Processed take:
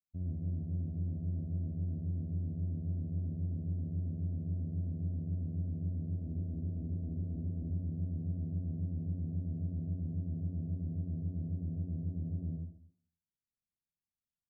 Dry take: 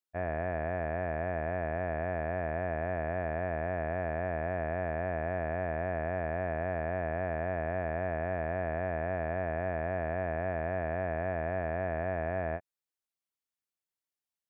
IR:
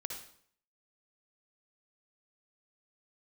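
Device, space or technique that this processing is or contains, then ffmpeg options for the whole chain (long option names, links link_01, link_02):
club heard from the street: -filter_complex "[0:a]asettb=1/sr,asplit=3[link_01][link_02][link_03];[link_01]atrim=end=6.094[link_04];[link_02]atrim=start=6.09:end=7.7,asetpts=PTS-STARTPTS,afade=type=in:duration=0.004:curve=qsin,afade=type=out:start_time=1.606:duration=0.004:curve=qsin,asplit=2[link_05][link_06];[link_06]adelay=41,volume=-5.5dB[link_07];[link_05][link_07]amix=inputs=2:normalize=0,atrim=end_sample=71001[link_08];[link_03]atrim=start=7.696[link_09];[link_04][link_08]acrossfade=duration=0.004:curve1=hsin:curve2=qsin[link_10];[link_10][link_09]acrossfade=duration=0.004:curve1=qsin:curve2=hsin,alimiter=level_in=2dB:limit=-24dB:level=0:latency=1,volume=-2dB,lowpass=frequency=230:width=0.5412,lowpass=frequency=230:width=1.3066[link_11];[1:a]atrim=start_sample=2205[link_12];[link_11][link_12]afir=irnorm=-1:irlink=0,volume=7.5dB"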